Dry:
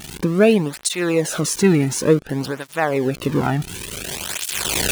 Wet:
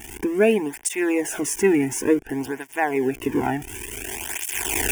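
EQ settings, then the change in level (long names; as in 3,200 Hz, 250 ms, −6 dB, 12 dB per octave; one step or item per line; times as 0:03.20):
phaser with its sweep stopped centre 830 Hz, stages 8
0.0 dB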